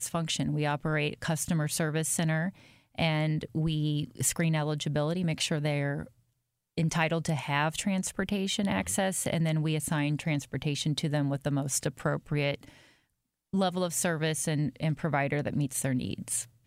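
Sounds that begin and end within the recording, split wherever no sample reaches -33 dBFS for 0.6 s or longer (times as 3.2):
6.78–12.63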